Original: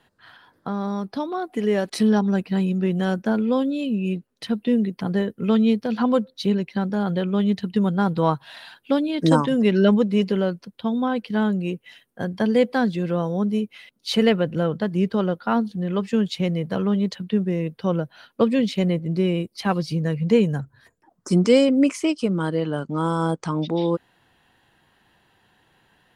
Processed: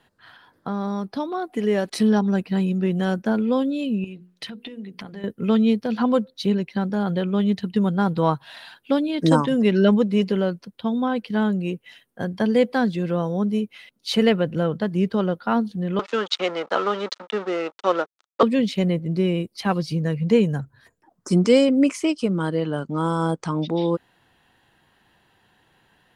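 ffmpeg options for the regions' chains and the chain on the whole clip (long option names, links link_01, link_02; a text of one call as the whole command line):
ffmpeg -i in.wav -filter_complex "[0:a]asettb=1/sr,asplit=3[link_01][link_02][link_03];[link_01]atrim=end=4.044[link_04];[link_02]atrim=start=4.04:end=5.24,asetpts=PTS-STARTPTS,afade=type=in:duration=0.004:curve=qsin,afade=type=out:start_time=1.196:duration=0.004:curve=qsin,acompressor=threshold=-32dB:ratio=12:attack=3.2:release=140:knee=1:detection=peak,equalizer=frequency=2600:width_type=o:width=1.9:gain=5.5,bandreject=frequency=60:width_type=h:width=6,bandreject=frequency=120:width_type=h:width=6,bandreject=frequency=180:width_type=h:width=6,bandreject=frequency=240:width_type=h:width=6,bandreject=frequency=300:width_type=h:width=6,bandreject=frequency=360:width_type=h:width=6,bandreject=frequency=420:width_type=h:width=6,bandreject=frequency=480:width_type=h:width=6[link_05];[link_03]atrim=start=5.236[link_06];[link_04][link_05]acrossfade=duration=0.004:curve1=hsin:curve2=qsin[link_07];[link_07][link_06]acrossfade=duration=0.004:curve1=qsin:curve2=hsin,asettb=1/sr,asplit=3[link_08][link_09][link_10];[link_08]atrim=end=15.994[link_11];[link_09]atrim=start=15.99:end=18.43,asetpts=PTS-STARTPTS,afade=type=in:duration=0.004:curve=qsin,afade=type=out:start_time=2.436:duration=0.004:curve=qsin,aeval=exprs='sgn(val(0))*max(abs(val(0))-0.0133,0)':channel_layout=same,acontrast=73,highpass=frequency=360:width=0.5412,highpass=frequency=360:width=1.3066,equalizer=frequency=450:width_type=q:width=4:gain=-4,equalizer=frequency=880:width_type=q:width=4:gain=3,equalizer=frequency=1300:width_type=q:width=4:gain=10,equalizer=frequency=3600:width_type=q:width=4:gain=4,lowpass=frequency=7100:width=0.5412,lowpass=frequency=7100:width=1.3066[link_12];[link_10]atrim=start=18.426[link_13];[link_11][link_12]acrossfade=duration=0.004:curve1=hsin:curve2=qsin[link_14];[link_14][link_13]acrossfade=duration=0.004:curve1=qsin:curve2=hsin" out.wav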